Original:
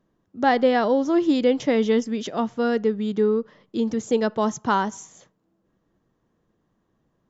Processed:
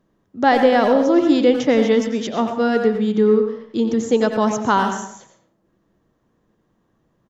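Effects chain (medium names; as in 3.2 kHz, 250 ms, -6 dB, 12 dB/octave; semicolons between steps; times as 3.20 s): speakerphone echo 90 ms, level -7 dB; plate-style reverb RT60 0.53 s, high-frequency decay 0.65×, pre-delay 95 ms, DRR 9 dB; trim +4 dB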